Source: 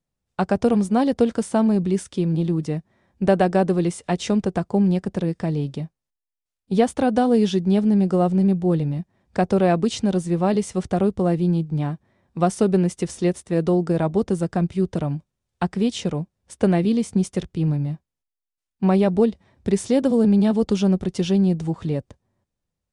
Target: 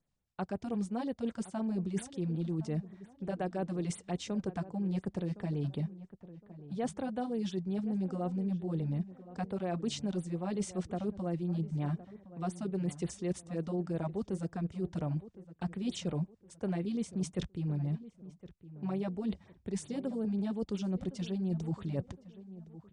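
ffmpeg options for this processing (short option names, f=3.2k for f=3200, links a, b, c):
-filter_complex "[0:a]lowpass=f=8.9k:w=0.5412,lowpass=f=8.9k:w=1.3066,areverse,acompressor=threshold=-31dB:ratio=16,areverse,asplit=2[a][b];[b]adelay=1063,lowpass=f=1.6k:p=1,volume=-15.5dB,asplit=2[c][d];[d]adelay=1063,lowpass=f=1.6k:p=1,volume=0.35,asplit=2[e][f];[f]adelay=1063,lowpass=f=1.6k:p=1,volume=0.35[g];[a][c][e][g]amix=inputs=4:normalize=0,afftfilt=real='re*(1-between(b*sr/1024,350*pow(6700/350,0.5+0.5*sin(2*PI*5.6*pts/sr))/1.41,350*pow(6700/350,0.5+0.5*sin(2*PI*5.6*pts/sr))*1.41))':imag='im*(1-between(b*sr/1024,350*pow(6700/350,0.5+0.5*sin(2*PI*5.6*pts/sr))/1.41,350*pow(6700/350,0.5+0.5*sin(2*PI*5.6*pts/sr))*1.41))':win_size=1024:overlap=0.75"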